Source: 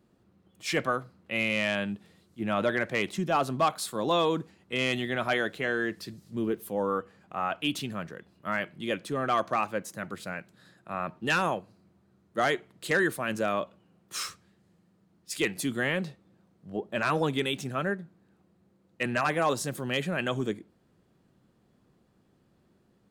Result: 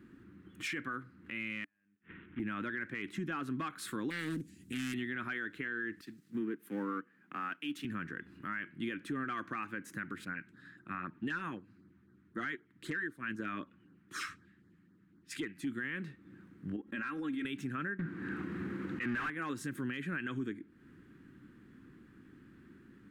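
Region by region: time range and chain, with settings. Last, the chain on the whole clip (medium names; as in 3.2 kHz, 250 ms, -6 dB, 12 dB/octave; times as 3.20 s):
1.64–2.40 s: CVSD coder 16 kbps + compression, threshold -33 dBFS + inverted gate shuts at -35 dBFS, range -41 dB
4.10–4.94 s: FFT filter 210 Hz 0 dB, 1.3 kHz -22 dB, 7.8 kHz +15 dB + loudspeaker Doppler distortion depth 0.62 ms
6.01–7.85 s: companding laws mixed up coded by A + high-pass 150 Hz 24 dB/octave + three bands expanded up and down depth 40%
10.25–15.67 s: treble shelf 8.8 kHz -9.5 dB + LFO notch sine 3.9 Hz 390–2800 Hz + upward expansion, over -39 dBFS
16.76–17.45 s: comb 3.7 ms, depth 68% + level held to a coarse grid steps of 20 dB
17.99–19.30 s: bass shelf 160 Hz +11.5 dB + slow attack 122 ms + overdrive pedal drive 35 dB, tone 2.3 kHz, clips at -13.5 dBFS
whole clip: FFT filter 190 Hz 0 dB, 290 Hz +9 dB, 640 Hz -18 dB, 1.6 kHz +9 dB, 4.6 kHz -9 dB, 9 kHz -7 dB; compression 4:1, threshold -43 dBFS; peak limiter -35 dBFS; trim +6.5 dB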